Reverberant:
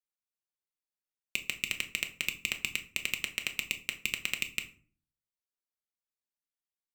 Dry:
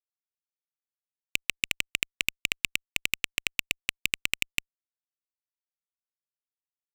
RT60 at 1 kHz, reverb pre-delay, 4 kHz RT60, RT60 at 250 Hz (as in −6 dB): 0.40 s, 5 ms, 0.25 s, 0.65 s